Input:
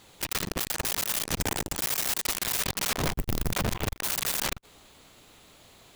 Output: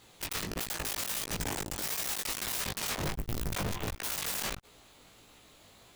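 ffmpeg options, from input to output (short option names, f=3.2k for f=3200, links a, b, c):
-af "flanger=delay=17:depth=3.5:speed=1.5,asoftclip=type=tanh:threshold=-27.5dB"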